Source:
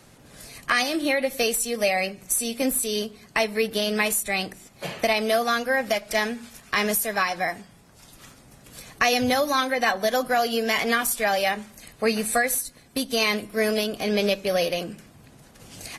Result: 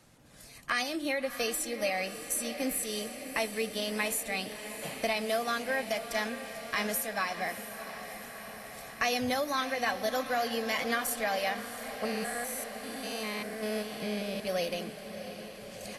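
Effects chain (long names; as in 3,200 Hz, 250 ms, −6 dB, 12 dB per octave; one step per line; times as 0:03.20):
0:12.05–0:14.40: spectrum averaged block by block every 200 ms
notch filter 400 Hz, Q 12
feedback delay with all-pass diffusion 671 ms, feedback 72%, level −11 dB
level −8.5 dB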